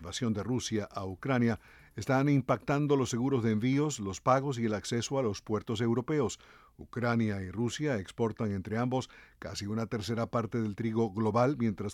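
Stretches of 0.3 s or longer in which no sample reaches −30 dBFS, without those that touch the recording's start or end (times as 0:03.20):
0:01.54–0:01.98
0:06.33–0:06.97
0:09.03–0:09.42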